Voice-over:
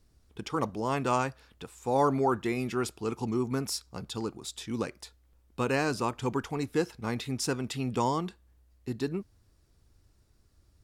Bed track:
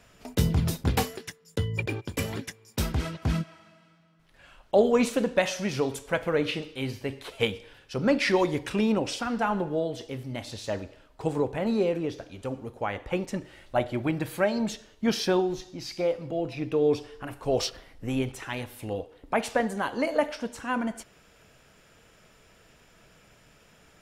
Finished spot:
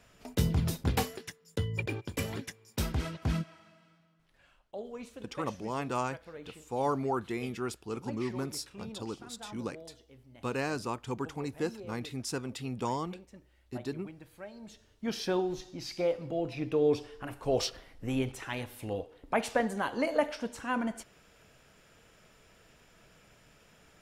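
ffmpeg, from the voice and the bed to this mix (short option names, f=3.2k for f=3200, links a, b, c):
-filter_complex "[0:a]adelay=4850,volume=-5dB[a];[1:a]volume=14dB,afade=t=out:st=3.94:d=0.83:silence=0.141254,afade=t=in:st=14.62:d=1.09:silence=0.125893[b];[a][b]amix=inputs=2:normalize=0"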